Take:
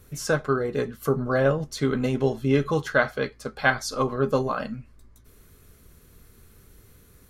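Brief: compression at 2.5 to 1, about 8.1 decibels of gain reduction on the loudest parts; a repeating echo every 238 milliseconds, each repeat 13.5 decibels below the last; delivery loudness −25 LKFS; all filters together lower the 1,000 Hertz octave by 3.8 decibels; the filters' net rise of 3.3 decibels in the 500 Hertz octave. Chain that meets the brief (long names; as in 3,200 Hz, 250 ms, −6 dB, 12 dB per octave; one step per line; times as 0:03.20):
parametric band 500 Hz +5.5 dB
parametric band 1,000 Hz −7 dB
downward compressor 2.5 to 1, threshold −27 dBFS
repeating echo 238 ms, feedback 21%, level −13.5 dB
level +4.5 dB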